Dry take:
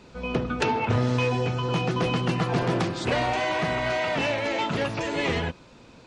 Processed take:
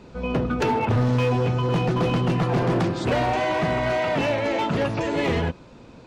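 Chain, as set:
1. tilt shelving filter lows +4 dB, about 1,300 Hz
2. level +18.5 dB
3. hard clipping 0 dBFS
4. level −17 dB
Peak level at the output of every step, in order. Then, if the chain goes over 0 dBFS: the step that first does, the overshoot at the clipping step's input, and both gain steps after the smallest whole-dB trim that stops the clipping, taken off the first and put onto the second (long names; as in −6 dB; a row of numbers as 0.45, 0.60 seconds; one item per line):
−9.0, +9.5, 0.0, −17.0 dBFS
step 2, 9.5 dB
step 2 +8.5 dB, step 4 −7 dB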